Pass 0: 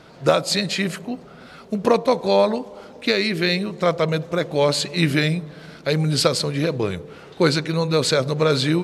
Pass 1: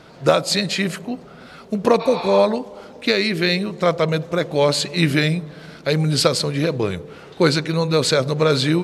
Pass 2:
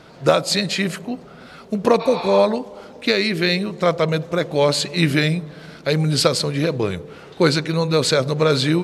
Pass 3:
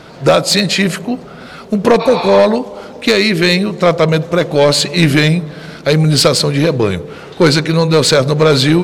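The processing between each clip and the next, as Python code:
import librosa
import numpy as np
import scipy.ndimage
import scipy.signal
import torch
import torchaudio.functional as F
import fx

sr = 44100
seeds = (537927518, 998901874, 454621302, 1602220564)

y1 = fx.spec_repair(x, sr, seeds[0], start_s=2.03, length_s=0.34, low_hz=640.0, high_hz=5600.0, source='both')
y1 = y1 * librosa.db_to_amplitude(1.5)
y2 = y1
y3 = 10.0 ** (-11.0 / 20.0) * np.tanh(y2 / 10.0 ** (-11.0 / 20.0))
y3 = y3 * librosa.db_to_amplitude(9.0)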